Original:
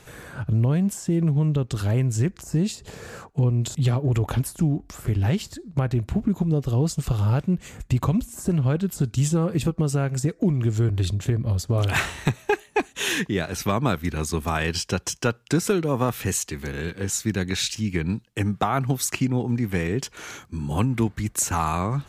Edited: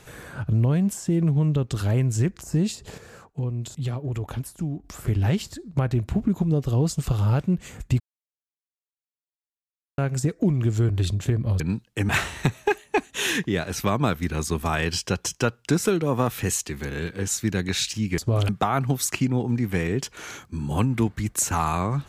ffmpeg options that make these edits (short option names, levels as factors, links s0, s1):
-filter_complex "[0:a]asplit=9[s0][s1][s2][s3][s4][s5][s6][s7][s8];[s0]atrim=end=2.982[s9];[s1]atrim=start=2.978:end=4.842,asetpts=PTS-STARTPTS,volume=0.447[s10];[s2]atrim=start=4.838:end=8,asetpts=PTS-STARTPTS,afade=t=out:st=3.158:d=0.004:c=hsin[s11];[s3]atrim=start=8:end=9.98,asetpts=PTS-STARTPTS,volume=0[s12];[s4]atrim=start=9.98:end=11.602,asetpts=PTS-STARTPTS,afade=t=in:d=0.004:c=hsin[s13];[s5]atrim=start=17.998:end=18.492[s14];[s6]atrim=start=11.908:end=18.002[s15];[s7]atrim=start=11.598:end=11.912[s16];[s8]atrim=start=18.488[s17];[s9][s10]acrossfade=d=0.004:c1=hsin:c2=hsin[s18];[s11][s12][s13]concat=n=3:v=0:a=1[s19];[s18][s19]acrossfade=d=0.004:c1=hsin:c2=hsin[s20];[s20][s14]acrossfade=d=0.004:c1=hsin:c2=hsin[s21];[s21][s15]acrossfade=d=0.004:c1=hsin:c2=hsin[s22];[s22][s16]acrossfade=d=0.004:c1=hsin:c2=hsin[s23];[s23][s17]acrossfade=d=0.004:c1=hsin:c2=hsin"